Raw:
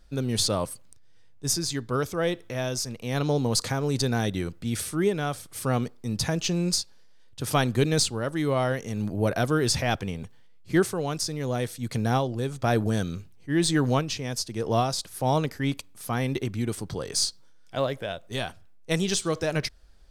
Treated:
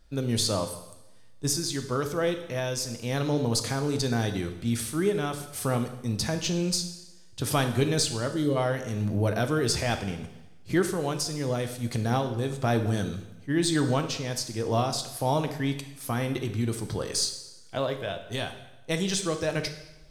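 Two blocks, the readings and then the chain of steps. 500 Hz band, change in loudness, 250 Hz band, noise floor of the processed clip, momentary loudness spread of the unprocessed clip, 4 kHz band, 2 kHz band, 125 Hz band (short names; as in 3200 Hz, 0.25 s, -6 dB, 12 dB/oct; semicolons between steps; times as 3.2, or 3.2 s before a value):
-1.0 dB, -1.0 dB, -1.0 dB, -49 dBFS, 8 LU, -1.0 dB, -1.5 dB, -1.0 dB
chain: recorder AGC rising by 7.5 dB/s; spectral gain 8.28–8.56, 640–2800 Hz -11 dB; two-slope reverb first 0.92 s, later 2.5 s, from -26 dB, DRR 6.5 dB; gain -2.5 dB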